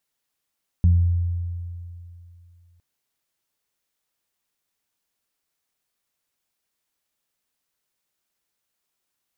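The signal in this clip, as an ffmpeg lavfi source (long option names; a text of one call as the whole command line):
ffmpeg -f lavfi -i "aevalsrc='0.266*pow(10,-3*t/2.68)*sin(2*PI*86.8*t)+0.0841*pow(10,-3*t/0.58)*sin(2*PI*173.6*t)':duration=1.96:sample_rate=44100" out.wav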